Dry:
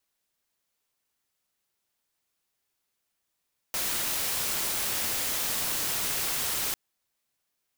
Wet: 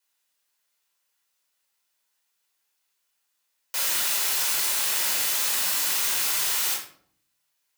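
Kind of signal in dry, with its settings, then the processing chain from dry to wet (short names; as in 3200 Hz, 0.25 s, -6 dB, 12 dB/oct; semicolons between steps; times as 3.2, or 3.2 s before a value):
noise white, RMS -29.5 dBFS 3.00 s
HPF 1300 Hz 6 dB/oct; shoebox room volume 720 m³, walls furnished, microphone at 4.9 m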